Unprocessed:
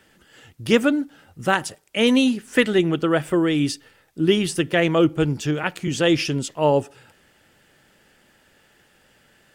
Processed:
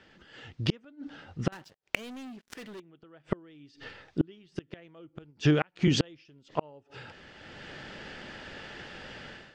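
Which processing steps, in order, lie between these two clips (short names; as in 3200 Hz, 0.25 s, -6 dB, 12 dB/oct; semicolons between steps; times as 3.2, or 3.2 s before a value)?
LPF 5200 Hz 24 dB/oct; AGC gain up to 15 dB; 1.52–2.8 sample leveller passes 5; 5.3–5.97 compressor 5:1, threshold -18 dBFS, peak gain reduction 6.5 dB; flipped gate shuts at -11 dBFS, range -38 dB; gain -1 dB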